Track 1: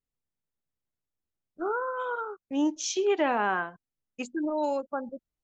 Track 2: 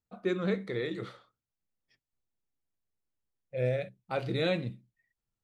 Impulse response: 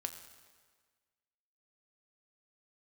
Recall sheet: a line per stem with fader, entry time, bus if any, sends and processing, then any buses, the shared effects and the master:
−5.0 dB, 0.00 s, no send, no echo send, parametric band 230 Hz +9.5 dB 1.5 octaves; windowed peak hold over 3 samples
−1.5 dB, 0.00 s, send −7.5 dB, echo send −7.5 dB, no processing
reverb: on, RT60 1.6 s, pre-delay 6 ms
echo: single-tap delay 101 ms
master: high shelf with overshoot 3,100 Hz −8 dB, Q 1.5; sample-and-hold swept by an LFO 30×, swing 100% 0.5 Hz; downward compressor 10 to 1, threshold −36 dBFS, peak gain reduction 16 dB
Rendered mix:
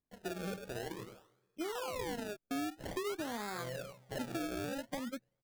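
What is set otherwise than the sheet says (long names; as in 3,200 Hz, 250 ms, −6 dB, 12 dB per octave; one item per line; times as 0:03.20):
stem 2 −1.5 dB → −10.0 dB
master: missing high shelf with overshoot 3,100 Hz −8 dB, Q 1.5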